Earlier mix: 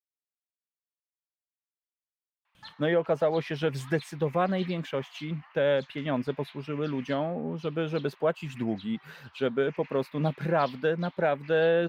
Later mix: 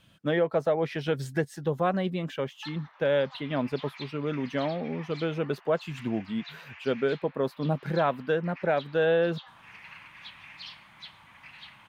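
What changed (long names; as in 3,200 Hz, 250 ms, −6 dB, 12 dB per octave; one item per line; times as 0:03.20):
speech: entry −2.55 s
background +4.0 dB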